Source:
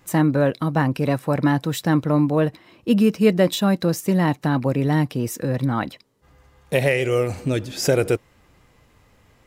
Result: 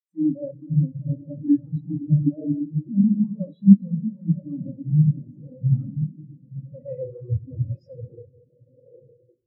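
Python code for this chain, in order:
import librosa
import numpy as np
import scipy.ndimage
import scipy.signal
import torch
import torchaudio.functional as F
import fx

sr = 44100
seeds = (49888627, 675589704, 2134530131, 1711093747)

p1 = x + fx.echo_diffused(x, sr, ms=1008, feedback_pct=49, wet_db=-15.5, dry=0)
p2 = fx.fuzz(p1, sr, gain_db=37.0, gate_db=-43.0)
p3 = fx.room_shoebox(p2, sr, seeds[0], volume_m3=2000.0, walls='mixed', distance_m=2.3)
p4 = fx.spectral_expand(p3, sr, expansion=4.0)
y = p4 * 10.0 ** (-5.0 / 20.0)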